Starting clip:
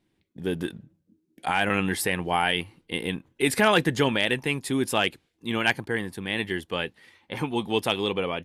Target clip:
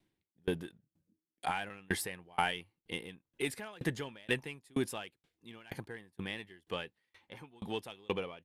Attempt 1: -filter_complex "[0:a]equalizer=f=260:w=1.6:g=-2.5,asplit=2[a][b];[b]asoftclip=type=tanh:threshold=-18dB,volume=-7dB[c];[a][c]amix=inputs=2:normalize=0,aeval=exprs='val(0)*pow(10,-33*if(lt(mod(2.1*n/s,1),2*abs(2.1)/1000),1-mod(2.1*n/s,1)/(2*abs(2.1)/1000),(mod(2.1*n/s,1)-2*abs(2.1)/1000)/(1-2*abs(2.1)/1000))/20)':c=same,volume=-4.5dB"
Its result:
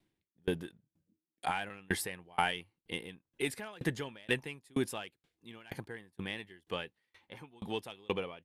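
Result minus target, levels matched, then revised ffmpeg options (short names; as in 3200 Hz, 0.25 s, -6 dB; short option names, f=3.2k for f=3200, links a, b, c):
soft clip: distortion -6 dB
-filter_complex "[0:a]equalizer=f=260:w=1.6:g=-2.5,asplit=2[a][b];[b]asoftclip=type=tanh:threshold=-25.5dB,volume=-7dB[c];[a][c]amix=inputs=2:normalize=0,aeval=exprs='val(0)*pow(10,-33*if(lt(mod(2.1*n/s,1),2*abs(2.1)/1000),1-mod(2.1*n/s,1)/(2*abs(2.1)/1000),(mod(2.1*n/s,1)-2*abs(2.1)/1000)/(1-2*abs(2.1)/1000))/20)':c=same,volume=-4.5dB"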